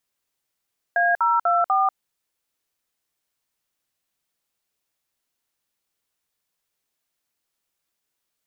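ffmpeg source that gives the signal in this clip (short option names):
-f lavfi -i "aevalsrc='0.112*clip(min(mod(t,0.246),0.191-mod(t,0.246))/0.002,0,1)*(eq(floor(t/0.246),0)*(sin(2*PI*697*mod(t,0.246))+sin(2*PI*1633*mod(t,0.246)))+eq(floor(t/0.246),1)*(sin(2*PI*941*mod(t,0.246))+sin(2*PI*1336*mod(t,0.246)))+eq(floor(t/0.246),2)*(sin(2*PI*697*mod(t,0.246))+sin(2*PI*1336*mod(t,0.246)))+eq(floor(t/0.246),3)*(sin(2*PI*770*mod(t,0.246))+sin(2*PI*1209*mod(t,0.246))))':d=0.984:s=44100"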